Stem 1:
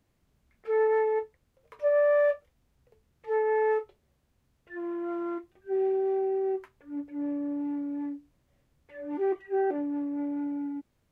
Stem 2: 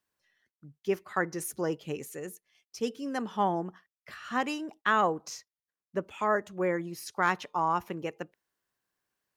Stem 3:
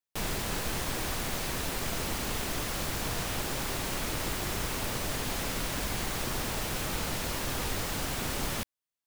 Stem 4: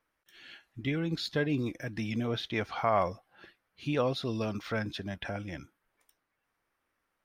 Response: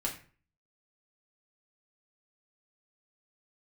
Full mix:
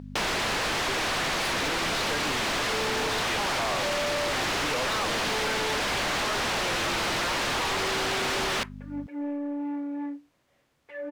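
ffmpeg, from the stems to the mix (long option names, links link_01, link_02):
-filter_complex "[0:a]adelay=2000,volume=-13dB[link_01];[1:a]volume=-14.5dB[link_02];[2:a]lowpass=5400,aeval=exprs='val(0)+0.00562*(sin(2*PI*50*n/s)+sin(2*PI*2*50*n/s)/2+sin(2*PI*3*50*n/s)/3+sin(2*PI*4*50*n/s)/4+sin(2*PI*5*50*n/s)/5)':channel_layout=same,volume=1dB[link_03];[3:a]adelay=750,volume=-7.5dB[link_04];[link_01][link_02][link_03][link_04]amix=inputs=4:normalize=0,asplit=2[link_05][link_06];[link_06]highpass=frequency=720:poles=1,volume=28dB,asoftclip=type=tanh:threshold=-16.5dB[link_07];[link_05][link_07]amix=inputs=2:normalize=0,lowpass=frequency=5400:poles=1,volume=-6dB,acompressor=threshold=-27dB:ratio=3"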